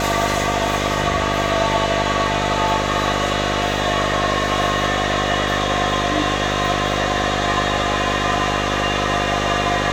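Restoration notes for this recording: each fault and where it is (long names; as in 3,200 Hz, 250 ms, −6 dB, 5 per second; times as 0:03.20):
mains buzz 50 Hz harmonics 12 −24 dBFS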